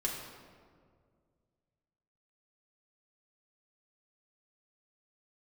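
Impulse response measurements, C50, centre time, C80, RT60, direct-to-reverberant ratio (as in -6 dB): 3.0 dB, 63 ms, 4.5 dB, 2.0 s, -2.5 dB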